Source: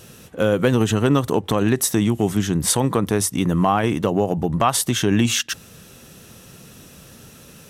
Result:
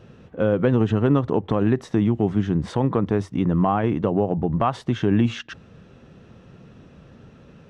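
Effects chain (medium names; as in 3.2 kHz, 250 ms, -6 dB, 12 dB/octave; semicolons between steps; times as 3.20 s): tape spacing loss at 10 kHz 38 dB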